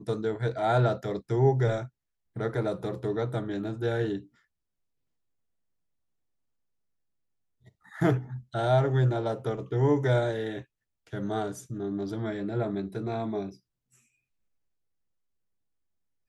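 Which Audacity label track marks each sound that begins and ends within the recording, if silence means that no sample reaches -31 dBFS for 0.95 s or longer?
8.020000	13.490000	sound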